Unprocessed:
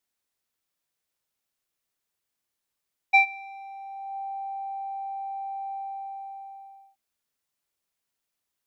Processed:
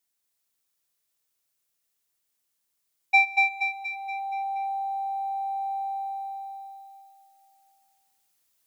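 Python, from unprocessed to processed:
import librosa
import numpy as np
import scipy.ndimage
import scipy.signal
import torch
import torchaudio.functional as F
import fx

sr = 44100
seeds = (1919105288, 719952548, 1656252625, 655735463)

p1 = x + fx.echo_feedback(x, sr, ms=237, feedback_pct=49, wet_db=-4, dry=0)
p2 = fx.rider(p1, sr, range_db=3, speed_s=2.0)
y = fx.high_shelf(p2, sr, hz=4300.0, db=9.0)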